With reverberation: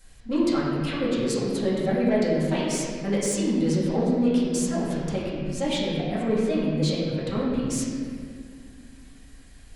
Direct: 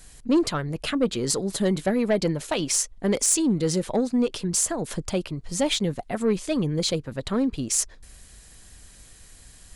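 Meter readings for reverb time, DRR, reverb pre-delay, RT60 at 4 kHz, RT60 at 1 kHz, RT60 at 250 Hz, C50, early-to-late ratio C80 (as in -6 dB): 2.1 s, -9.0 dB, 4 ms, 1.5 s, 1.8 s, 3.2 s, -1.5 dB, 0.5 dB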